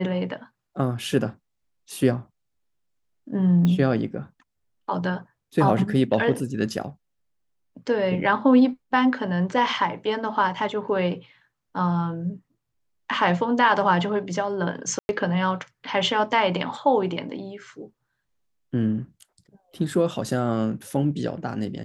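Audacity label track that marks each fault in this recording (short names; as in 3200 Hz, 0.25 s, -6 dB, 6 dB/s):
3.650000	3.650000	pop -13 dBFS
14.990000	15.090000	gap 0.101 s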